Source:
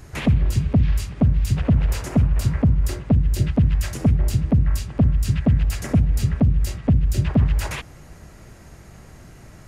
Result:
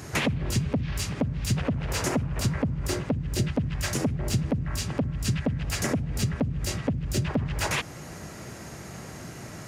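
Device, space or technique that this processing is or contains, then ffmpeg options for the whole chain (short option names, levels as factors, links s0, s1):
broadcast voice chain: -af "highpass=120,deesser=0.65,acompressor=threshold=0.0562:ratio=5,equalizer=f=5800:t=o:w=0.77:g=3,alimiter=limit=0.0841:level=0:latency=1:release=440,volume=2.11"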